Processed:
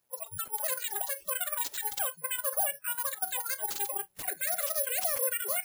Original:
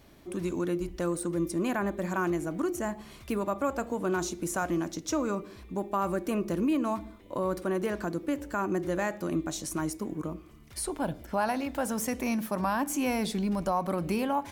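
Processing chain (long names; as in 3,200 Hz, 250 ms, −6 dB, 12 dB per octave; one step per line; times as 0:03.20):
change of speed 2.57×
high-pass filter 62 Hz 24 dB per octave
brickwall limiter −25.5 dBFS, peak gain reduction 8 dB
bit reduction 9 bits
noise reduction from a noise print of the clip's start 26 dB
bad sample-rate conversion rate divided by 4×, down none, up zero stuff
level −2 dB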